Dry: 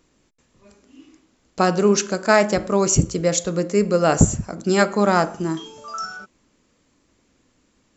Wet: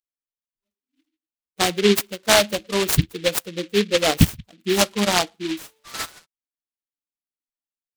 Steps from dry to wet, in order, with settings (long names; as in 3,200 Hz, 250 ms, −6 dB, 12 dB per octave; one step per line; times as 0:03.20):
spectral dynamics exaggerated over time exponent 2
short delay modulated by noise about 2,800 Hz, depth 0.16 ms
level +2 dB